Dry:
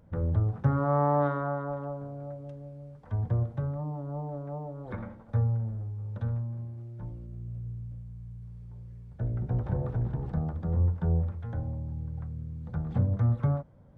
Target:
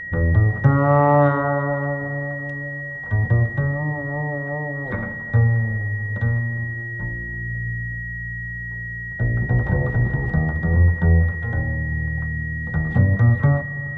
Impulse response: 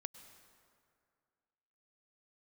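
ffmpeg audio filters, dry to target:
-filter_complex "[0:a]asplit=2[a][b];[1:a]atrim=start_sample=2205,asetrate=29988,aresample=44100[c];[b][c]afir=irnorm=-1:irlink=0,volume=0.5dB[d];[a][d]amix=inputs=2:normalize=0,aeval=exprs='val(0)+0.02*sin(2*PI*1900*n/s)':c=same,acontrast=21"

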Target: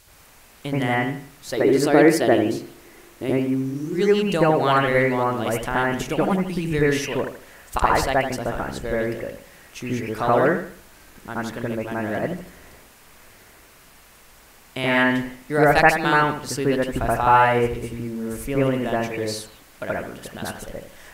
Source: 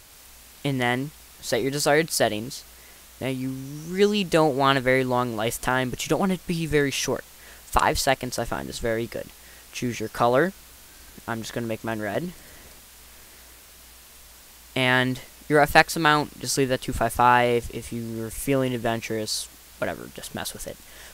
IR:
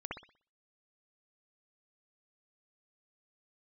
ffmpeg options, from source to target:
-filter_complex "[0:a]asettb=1/sr,asplit=3[a][b][c];[a]atrim=end=1.574[d];[b]atrim=start=1.57:end=3.94,asetpts=PTS-STARTPTS,afade=t=in:d=0.004:c=qsin,afade=t=out:st=2.366:d=0.004:c=qsin,equalizer=f=340:w=2.8:g=13[e];[c]atrim=start=3.936[f];[d][e]acrossfade=d=0.004:c1=hsin:c2=qsin[g];[g][f]acrossfade=d=0.004:c1=qsin:c2=hsin[h];[1:a]atrim=start_sample=2205,asetrate=35280,aresample=44100[i];[h][i]afir=irnorm=-1:irlink=0"

